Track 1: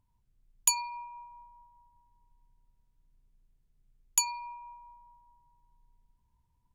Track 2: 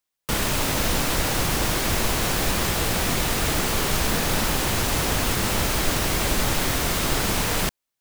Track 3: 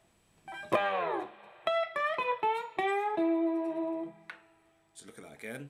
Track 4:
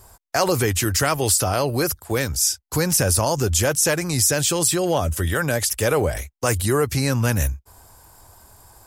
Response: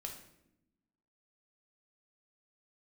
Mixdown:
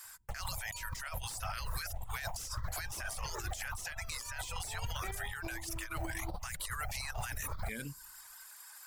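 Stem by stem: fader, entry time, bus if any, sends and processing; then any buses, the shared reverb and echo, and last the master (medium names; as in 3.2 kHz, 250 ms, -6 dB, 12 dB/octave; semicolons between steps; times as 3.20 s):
-5.0 dB, 0.05 s, no send, none
-10.5 dB, 0.00 s, send -6 dB, FFT filter 100 Hz 0 dB, 330 Hz -29 dB, 750 Hz +1 dB, 2.8 kHz -17 dB; vibrato 2.5 Hz 99 cents; stepped phaser 9.7 Hz 740–7000 Hz
0.0 dB, 2.25 s, send -18.5 dB, compression, threshold -34 dBFS, peak gain reduction 12 dB; peaking EQ 620 Hz -11 dB 2.1 oct
+2.5 dB, 0.00 s, send -19 dB, compression, threshold -20 dBFS, peak gain reduction 6 dB; ladder high-pass 1.3 kHz, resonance 35%; slew-rate limiter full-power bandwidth 220 Hz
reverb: on, RT60 0.80 s, pre-delay 6 ms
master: reverb removal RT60 0.7 s; compressor with a negative ratio -39 dBFS, ratio -1; peak limiter -28 dBFS, peak gain reduction 7 dB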